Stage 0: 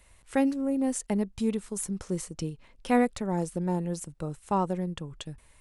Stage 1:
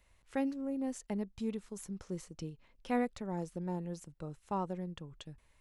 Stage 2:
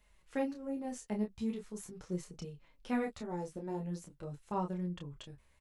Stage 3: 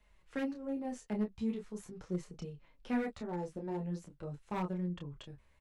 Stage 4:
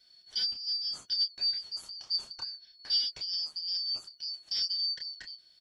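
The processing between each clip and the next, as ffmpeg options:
ffmpeg -i in.wav -af "equalizer=frequency=9200:width_type=o:width=0.48:gain=-10,volume=-9dB" out.wav
ffmpeg -i in.wav -filter_complex "[0:a]asplit=2[link_01][link_02];[link_02]adelay=28,volume=-5dB[link_03];[link_01][link_03]amix=inputs=2:normalize=0,flanger=delay=4.7:depth=9.6:regen=-15:speed=0.42:shape=sinusoidal,volume=2dB" out.wav
ffmpeg -i in.wav -filter_complex "[0:a]lowpass=frequency=3500:poles=1,acrossover=split=380|980|2700[link_01][link_02][link_03][link_04];[link_02]aeval=exprs='0.0112*(abs(mod(val(0)/0.0112+3,4)-2)-1)':channel_layout=same[link_05];[link_01][link_05][link_03][link_04]amix=inputs=4:normalize=0,volume=1dB" out.wav
ffmpeg -i in.wav -af "afftfilt=real='real(if(lt(b,272),68*(eq(floor(b/68),0)*3+eq(floor(b/68),1)*2+eq(floor(b/68),2)*1+eq(floor(b/68),3)*0)+mod(b,68),b),0)':imag='imag(if(lt(b,272),68*(eq(floor(b/68),0)*3+eq(floor(b/68),1)*2+eq(floor(b/68),2)*1+eq(floor(b/68),3)*0)+mod(b,68),b),0)':win_size=2048:overlap=0.75,tiltshelf=frequency=970:gain=4,volume=8dB" out.wav

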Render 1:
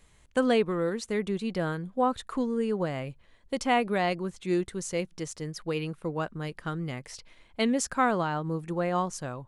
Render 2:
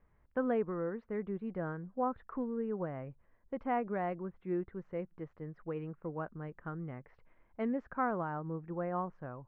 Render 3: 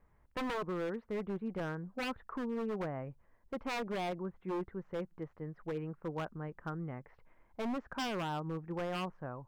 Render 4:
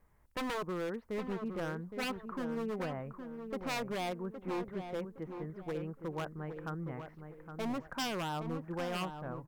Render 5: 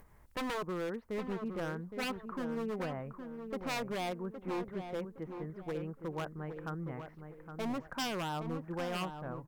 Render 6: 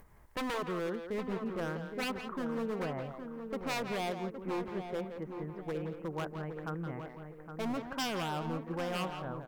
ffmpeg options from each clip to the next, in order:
ffmpeg -i in.wav -af "lowpass=frequency=1700:width=0.5412,lowpass=frequency=1700:width=1.3066,volume=-8dB" out.wav
ffmpeg -i in.wav -af "equalizer=frequency=870:width_type=o:width=0.58:gain=3,aeval=exprs='0.0251*(abs(mod(val(0)/0.0251+3,4)-2)-1)':channel_layout=same,volume=1dB" out.wav
ffmpeg -i in.wav -filter_complex "[0:a]aemphasis=mode=production:type=cd,asplit=2[link_01][link_02];[link_02]adelay=815,lowpass=frequency=1800:poles=1,volume=-7.5dB,asplit=2[link_03][link_04];[link_04]adelay=815,lowpass=frequency=1800:poles=1,volume=0.35,asplit=2[link_05][link_06];[link_06]adelay=815,lowpass=frequency=1800:poles=1,volume=0.35,asplit=2[link_07][link_08];[link_08]adelay=815,lowpass=frequency=1800:poles=1,volume=0.35[link_09];[link_01][link_03][link_05][link_07][link_09]amix=inputs=5:normalize=0" out.wav
ffmpeg -i in.wav -af "acompressor=mode=upward:threshold=-51dB:ratio=2.5" out.wav
ffmpeg -i in.wav -filter_complex "[0:a]asplit=2[link_01][link_02];[link_02]adelay=170,highpass=300,lowpass=3400,asoftclip=type=hard:threshold=-35dB,volume=-6dB[link_03];[link_01][link_03]amix=inputs=2:normalize=0,volume=1dB" out.wav

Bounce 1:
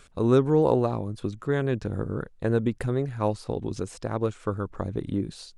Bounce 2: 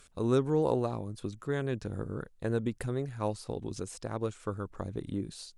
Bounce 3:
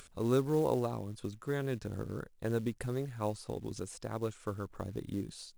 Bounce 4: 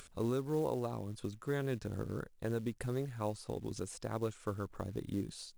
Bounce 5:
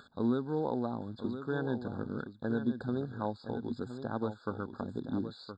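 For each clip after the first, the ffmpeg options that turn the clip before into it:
ffmpeg -i in.wav -af "aemphasis=mode=production:type=cd,volume=-6.5dB" out.wav
ffmpeg -i in.wav -af "acrusher=bits=6:mode=log:mix=0:aa=0.000001,acompressor=mode=upward:threshold=-46dB:ratio=2.5,volume=-2.5dB" out.wav
ffmpeg -i in.wav -af "alimiter=level_in=0.5dB:limit=-24dB:level=0:latency=1:release=424,volume=-0.5dB" out.wav
ffmpeg -i in.wav -filter_complex "[0:a]highpass=100,equalizer=frequency=240:width_type=q:width=4:gain=10,equalizer=frequency=820:width_type=q:width=4:gain=6,equalizer=frequency=1500:width_type=q:width=4:gain=6,equalizer=frequency=3200:width_type=q:width=4:gain=4,lowpass=frequency=4800:width=0.5412,lowpass=frequency=4800:width=1.3066,asplit=2[link_01][link_02];[link_02]aecho=0:1:1018:0.335[link_03];[link_01][link_03]amix=inputs=2:normalize=0,afftfilt=real='re*eq(mod(floor(b*sr/1024/1700),2),0)':imag='im*eq(mod(floor(b*sr/1024/1700),2),0)':win_size=1024:overlap=0.75" out.wav

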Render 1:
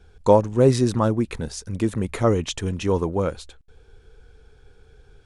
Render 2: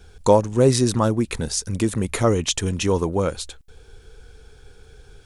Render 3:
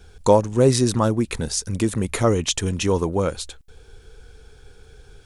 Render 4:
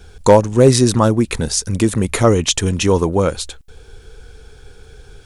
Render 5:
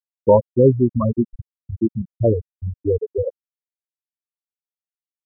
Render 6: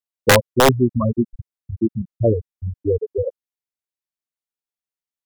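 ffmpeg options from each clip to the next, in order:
ffmpeg -i in.wav -filter_complex "[0:a]highshelf=frequency=4200:gain=10.5,asplit=2[link_01][link_02];[link_02]acompressor=threshold=-27dB:ratio=6,volume=-0.5dB[link_03];[link_01][link_03]amix=inputs=2:normalize=0,volume=-1.5dB" out.wav
ffmpeg -i in.wav -af anull out.wav
ffmpeg -i in.wav -af "asoftclip=type=hard:threshold=-7dB,volume=6dB" out.wav
ffmpeg -i in.wav -af "aeval=exprs='0.944*(cos(1*acos(clip(val(0)/0.944,-1,1)))-cos(1*PI/2))+0.00668*(cos(6*acos(clip(val(0)/0.944,-1,1)))-cos(6*PI/2))':channel_layout=same,afftfilt=real='re*gte(hypot(re,im),1.26)':imag='im*gte(hypot(re,im),1.26)':win_size=1024:overlap=0.75,volume=-2.5dB" out.wav
ffmpeg -i in.wav -af "aeval=exprs='(mod(1.78*val(0)+1,2)-1)/1.78':channel_layout=same" out.wav

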